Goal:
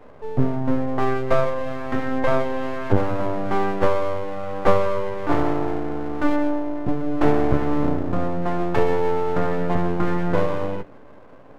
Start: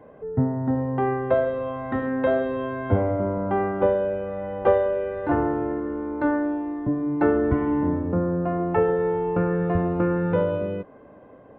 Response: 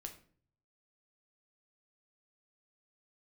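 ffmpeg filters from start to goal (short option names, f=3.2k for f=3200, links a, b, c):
-filter_complex "[0:a]bandreject=f=83.74:t=h:w=4,bandreject=f=167.48:t=h:w=4,aeval=exprs='max(val(0),0)':c=same,asplit=2[a][b];[1:a]atrim=start_sample=2205,asetrate=42336,aresample=44100[c];[b][c]afir=irnorm=-1:irlink=0,volume=-4.5dB[d];[a][d]amix=inputs=2:normalize=0,volume=2.5dB"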